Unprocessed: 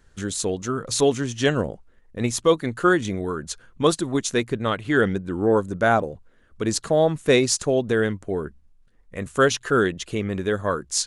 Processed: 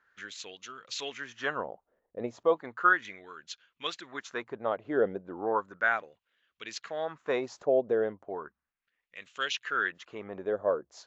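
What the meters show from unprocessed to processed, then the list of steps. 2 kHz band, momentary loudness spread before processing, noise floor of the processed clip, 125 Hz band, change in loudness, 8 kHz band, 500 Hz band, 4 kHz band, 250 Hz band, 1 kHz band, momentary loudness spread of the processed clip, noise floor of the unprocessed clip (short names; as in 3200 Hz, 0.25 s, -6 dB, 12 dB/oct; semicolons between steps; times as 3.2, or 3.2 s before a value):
-4.5 dB, 9 LU, under -85 dBFS, -24.0 dB, -9.0 dB, -20.5 dB, -9.5 dB, -10.0 dB, -16.5 dB, -6.5 dB, 18 LU, -56 dBFS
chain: steep low-pass 7300 Hz 96 dB/oct; LFO band-pass sine 0.35 Hz 580–3000 Hz; AAC 96 kbps 22050 Hz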